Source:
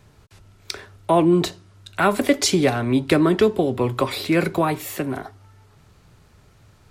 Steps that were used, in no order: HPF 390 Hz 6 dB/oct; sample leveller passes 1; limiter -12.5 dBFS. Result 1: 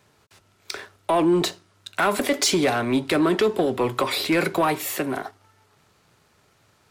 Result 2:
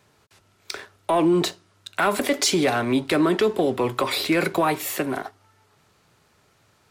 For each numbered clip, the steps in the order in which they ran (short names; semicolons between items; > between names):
HPF > limiter > sample leveller; HPF > sample leveller > limiter